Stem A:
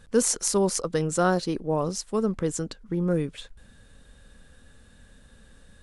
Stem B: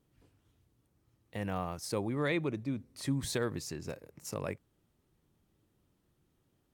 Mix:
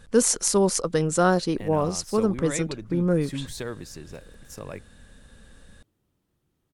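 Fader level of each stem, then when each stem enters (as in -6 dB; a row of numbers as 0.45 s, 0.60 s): +2.5 dB, -0.5 dB; 0.00 s, 0.25 s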